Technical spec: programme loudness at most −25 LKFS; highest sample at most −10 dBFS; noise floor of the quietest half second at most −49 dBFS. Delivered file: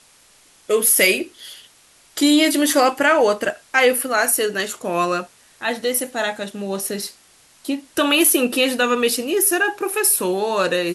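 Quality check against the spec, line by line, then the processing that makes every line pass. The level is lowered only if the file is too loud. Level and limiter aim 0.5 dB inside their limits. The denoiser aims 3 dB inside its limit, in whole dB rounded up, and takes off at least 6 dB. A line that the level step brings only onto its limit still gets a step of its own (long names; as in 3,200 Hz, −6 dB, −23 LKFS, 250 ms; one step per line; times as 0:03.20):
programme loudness −18.5 LKFS: out of spec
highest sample −4.5 dBFS: out of spec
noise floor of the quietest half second −53 dBFS: in spec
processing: level −7 dB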